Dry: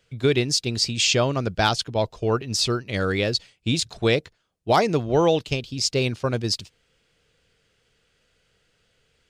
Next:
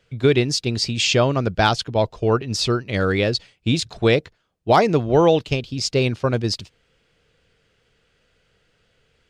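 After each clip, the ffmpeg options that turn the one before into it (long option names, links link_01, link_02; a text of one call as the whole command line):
ffmpeg -i in.wav -af "highshelf=frequency=4800:gain=-9,volume=4dB" out.wav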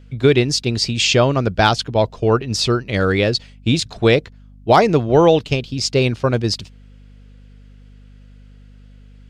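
ffmpeg -i in.wav -af "aeval=exprs='val(0)+0.00562*(sin(2*PI*50*n/s)+sin(2*PI*2*50*n/s)/2+sin(2*PI*3*50*n/s)/3+sin(2*PI*4*50*n/s)/4+sin(2*PI*5*50*n/s)/5)':channel_layout=same,volume=3dB" out.wav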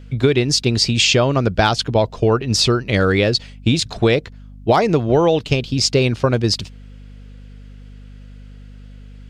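ffmpeg -i in.wav -af "acompressor=threshold=-17dB:ratio=4,volume=5dB" out.wav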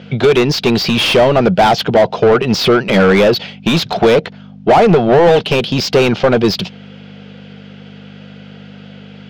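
ffmpeg -i in.wav -filter_complex "[0:a]highpass=130,equalizer=frequency=180:width_type=q:width=4:gain=9,equalizer=frequency=280:width_type=q:width=4:gain=-7,equalizer=frequency=750:width_type=q:width=4:gain=4,equalizer=frequency=1100:width_type=q:width=4:gain=-6,equalizer=frequency=1800:width_type=q:width=4:gain=-5,equalizer=frequency=3200:width_type=q:width=4:gain=4,lowpass=frequency=5900:width=0.5412,lowpass=frequency=5900:width=1.3066,asplit=2[link_01][link_02];[link_02]highpass=frequency=720:poles=1,volume=26dB,asoftclip=type=tanh:threshold=-1.5dB[link_03];[link_01][link_03]amix=inputs=2:normalize=0,lowpass=frequency=1300:poles=1,volume=-6dB,volume=1dB" out.wav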